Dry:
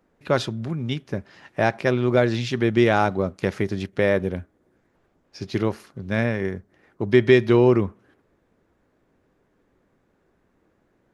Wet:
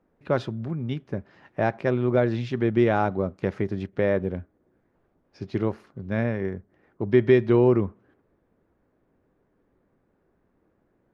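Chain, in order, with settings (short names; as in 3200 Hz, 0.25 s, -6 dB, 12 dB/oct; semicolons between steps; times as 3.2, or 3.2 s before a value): LPF 1300 Hz 6 dB/oct; gain -2 dB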